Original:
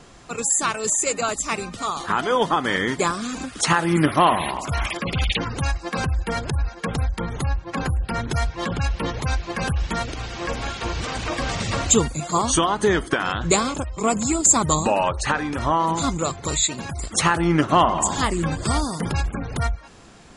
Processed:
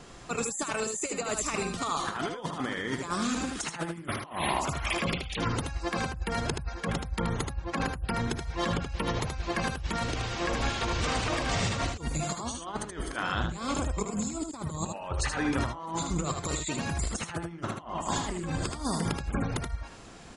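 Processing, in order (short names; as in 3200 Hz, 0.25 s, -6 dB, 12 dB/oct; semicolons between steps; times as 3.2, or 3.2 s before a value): negative-ratio compressor -26 dBFS, ratio -0.5; echo 77 ms -5.5 dB; gain -6 dB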